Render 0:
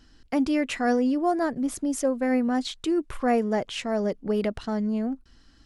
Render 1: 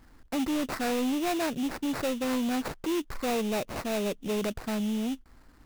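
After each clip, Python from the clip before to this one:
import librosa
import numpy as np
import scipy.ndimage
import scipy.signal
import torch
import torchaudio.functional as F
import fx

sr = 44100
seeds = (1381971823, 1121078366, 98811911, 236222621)

y = fx.sample_hold(x, sr, seeds[0], rate_hz=3200.0, jitter_pct=20)
y = 10.0 ** (-25.0 / 20.0) * np.tanh(y / 10.0 ** (-25.0 / 20.0))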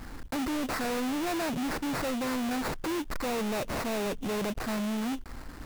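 y = fx.leveller(x, sr, passes=5)
y = y * librosa.db_to_amplitude(-4.5)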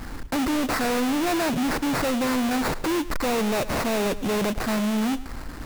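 y = x + 10.0 ** (-16.5 / 20.0) * np.pad(x, (int(106 * sr / 1000.0), 0))[:len(x)]
y = y * librosa.db_to_amplitude(7.0)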